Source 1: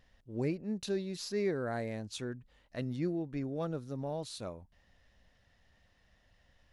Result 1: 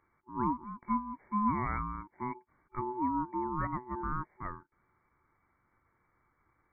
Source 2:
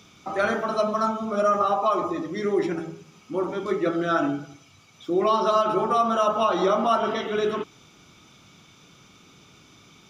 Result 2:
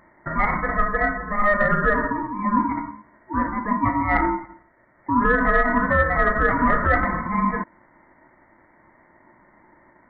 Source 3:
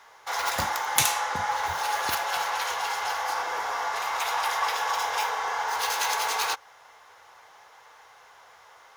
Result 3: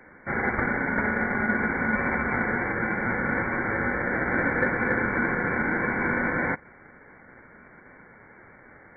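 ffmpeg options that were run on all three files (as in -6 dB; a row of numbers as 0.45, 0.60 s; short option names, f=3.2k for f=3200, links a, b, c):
-af "afftfilt=real='re*between(b*sr/4096,240,1700)':imag='im*between(b*sr/4096,240,1700)':win_size=4096:overlap=0.75,acontrast=63,aeval=exprs='val(0)*sin(2*PI*620*n/s)':c=same"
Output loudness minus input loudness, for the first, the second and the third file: +1.5, +2.5, +1.5 LU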